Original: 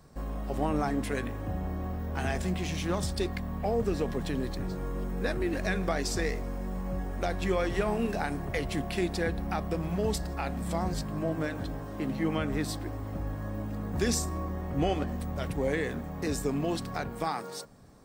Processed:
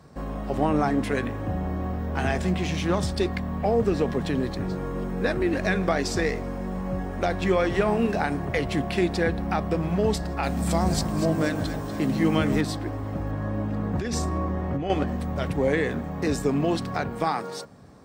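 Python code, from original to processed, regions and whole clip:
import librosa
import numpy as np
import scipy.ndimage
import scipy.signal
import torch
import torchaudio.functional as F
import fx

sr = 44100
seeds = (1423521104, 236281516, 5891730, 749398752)

y = fx.chain(x, sr, fx.bass_treble(bass_db=2, treble_db=11),
    fx.echo_split(split_hz=820.0, low_ms=158, high_ms=241, feedback_pct=52, wet_db=-10.5), at=(10.43, 12.61))
y = fx.chain(y, sr, fx.high_shelf(hz=5400.0, db=-8.0),
    fx.over_compress(threshold_db=-31.0, ratio=-1.0), at=(13.31, 14.9))
y = scipy.signal.sosfilt(scipy.signal.butter(2, 68.0, 'highpass', fs=sr, output='sos'), y)
y = fx.high_shelf(y, sr, hz=7500.0, db=-11.5)
y = y * librosa.db_to_amplitude(6.5)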